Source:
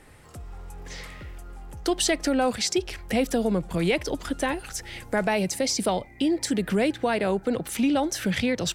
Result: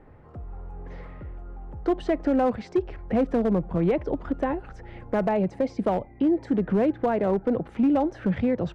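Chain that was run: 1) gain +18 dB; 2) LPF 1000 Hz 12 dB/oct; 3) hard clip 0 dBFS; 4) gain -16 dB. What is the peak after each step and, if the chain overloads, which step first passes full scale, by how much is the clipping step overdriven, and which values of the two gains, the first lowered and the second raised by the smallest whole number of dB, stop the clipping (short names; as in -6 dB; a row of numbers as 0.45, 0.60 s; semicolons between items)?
+6.5, +4.0, 0.0, -16.0 dBFS; step 1, 4.0 dB; step 1 +14 dB, step 4 -12 dB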